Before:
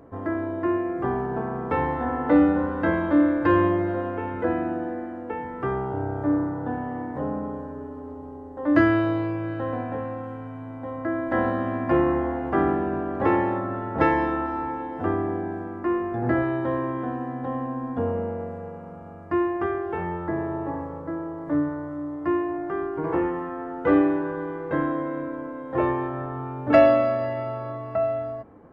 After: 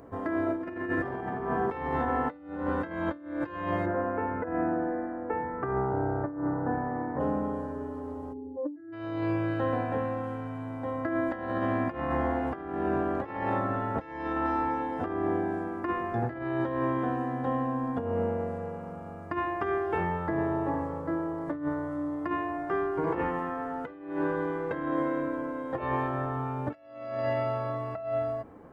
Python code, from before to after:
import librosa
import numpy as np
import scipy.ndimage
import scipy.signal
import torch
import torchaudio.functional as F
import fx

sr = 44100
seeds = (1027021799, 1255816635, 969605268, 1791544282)

y = fx.reverb_throw(x, sr, start_s=0.42, length_s=0.84, rt60_s=2.2, drr_db=-4.5)
y = fx.lowpass(y, sr, hz=1900.0, slope=24, at=(3.85, 7.19), fade=0.02)
y = fx.spec_expand(y, sr, power=2.4, at=(8.32, 8.92), fade=0.02)
y = fx.high_shelf(y, sr, hz=3800.0, db=8.5)
y = fx.hum_notches(y, sr, base_hz=50, count=7)
y = fx.over_compress(y, sr, threshold_db=-27.0, ratio=-0.5)
y = F.gain(torch.from_numpy(y), -2.5).numpy()